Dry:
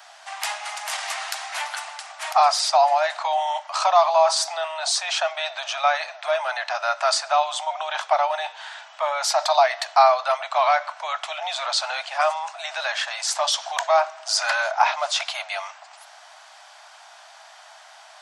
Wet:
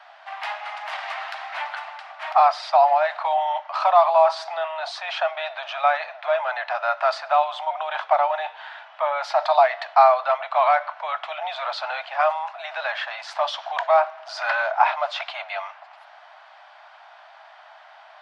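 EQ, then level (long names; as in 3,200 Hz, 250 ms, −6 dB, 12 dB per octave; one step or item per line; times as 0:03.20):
high-frequency loss of the air 370 metres
+2.5 dB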